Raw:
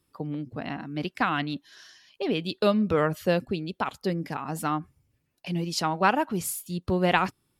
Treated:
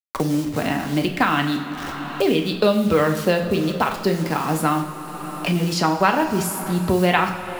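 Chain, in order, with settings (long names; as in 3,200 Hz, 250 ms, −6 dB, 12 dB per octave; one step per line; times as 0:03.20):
hold until the input has moved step −41.5 dBFS
coupled-rooms reverb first 0.52 s, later 4 s, from −18 dB, DRR 3 dB
multiband upward and downward compressor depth 70%
level +5.5 dB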